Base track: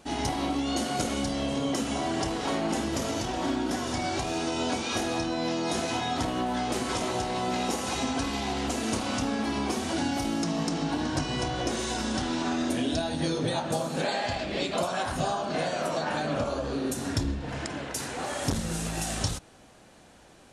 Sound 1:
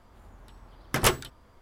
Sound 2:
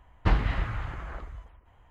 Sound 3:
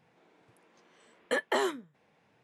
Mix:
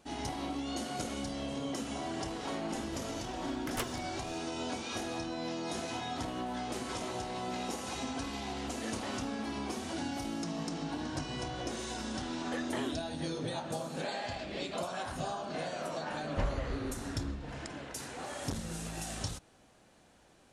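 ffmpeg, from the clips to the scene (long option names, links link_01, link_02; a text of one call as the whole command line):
ffmpeg -i bed.wav -i cue0.wav -i cue1.wav -i cue2.wav -filter_complex "[3:a]asplit=2[link_01][link_02];[0:a]volume=-8.5dB[link_03];[1:a]acompressor=mode=upward:threshold=-33dB:ratio=4:attack=3:release=32:knee=2.83:detection=peak,atrim=end=1.61,asetpts=PTS-STARTPTS,volume=-15dB,afade=type=in:duration=0.004:curve=hsin,afade=type=out:start_time=1.606:duration=0.004:curve=hsin,adelay=2730[link_04];[link_01]atrim=end=2.43,asetpts=PTS-STARTPTS,volume=-16.5dB,afade=type=in:duration=0.004:curve=hsin,afade=type=out:start_time=2.426:duration=0.004:curve=hsin,adelay=7510[link_05];[link_02]atrim=end=2.43,asetpts=PTS-STARTPTS,volume=-11dB,afade=type=in:duration=0.004:curve=hsin,afade=type=out:start_time=2.426:duration=0.004:curve=hsin,adelay=11210[link_06];[2:a]atrim=end=1.9,asetpts=PTS-STARTPTS,volume=-10.5dB,afade=type=in:duration=0.004:curve=hsin,afade=type=out:start_time=1.896:duration=0.004:curve=hsin,adelay=16120[link_07];[link_03][link_04][link_05][link_06][link_07]amix=inputs=5:normalize=0" out.wav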